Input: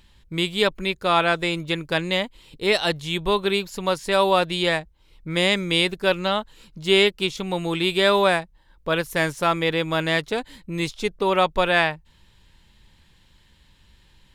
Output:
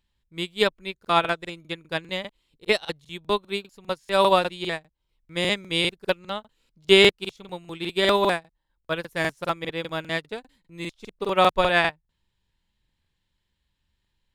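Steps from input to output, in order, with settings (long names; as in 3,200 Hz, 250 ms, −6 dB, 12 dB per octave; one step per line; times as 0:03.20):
regular buffer underruns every 0.20 s, samples 2,048, repeat, from 0:01.00
expander for the loud parts 2.5 to 1, over −30 dBFS
level +3.5 dB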